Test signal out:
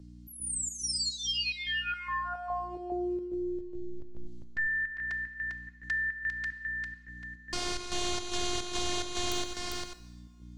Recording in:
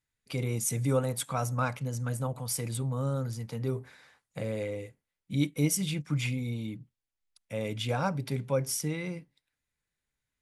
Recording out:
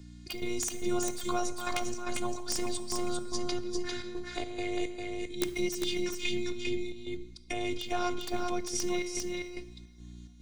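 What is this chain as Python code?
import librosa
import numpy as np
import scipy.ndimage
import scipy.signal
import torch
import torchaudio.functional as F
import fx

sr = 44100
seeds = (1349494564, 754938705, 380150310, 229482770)

p1 = scipy.signal.sosfilt(scipy.signal.butter(4, 7900.0, 'lowpass', fs=sr, output='sos'), x)
p2 = fx.peak_eq(p1, sr, hz=4800.0, db=5.5, octaves=0.7)
p3 = fx.over_compress(p2, sr, threshold_db=-41.0, ratio=-1.0)
p4 = p2 + (p3 * 10.0 ** (3.0 / 20.0))
p5 = fx.robotise(p4, sr, hz=355.0)
p6 = (np.mod(10.0 ** (15.5 / 20.0) * p5 + 1.0, 2.0) - 1.0) / 10.0 ** (15.5 / 20.0)
p7 = fx.dmg_buzz(p6, sr, base_hz=60.0, harmonics=5, level_db=-57.0, tilt_db=-3, odd_only=False)
p8 = fx.chopper(p7, sr, hz=2.4, depth_pct=65, duty_pct=65)
p9 = p8 + fx.echo_single(p8, sr, ms=399, db=-4.5, dry=0)
p10 = fx.rev_double_slope(p9, sr, seeds[0], early_s=0.91, late_s=3.5, knee_db=-27, drr_db=12.0)
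y = fx.band_squash(p10, sr, depth_pct=40)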